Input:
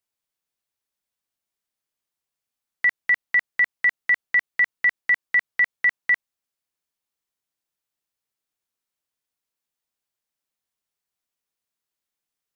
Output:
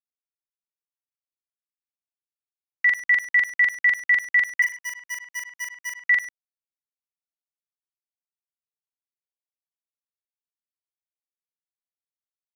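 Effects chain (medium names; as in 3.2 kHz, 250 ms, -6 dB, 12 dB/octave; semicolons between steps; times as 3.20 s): 4.62–6.02 s: median filter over 25 samples; gate -32 dBFS, range -18 dB; treble shelf 2.1 kHz +11.5 dB; word length cut 10-bit, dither none; doubling 43 ms -5 dB; speakerphone echo 100 ms, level -9 dB; trim -5 dB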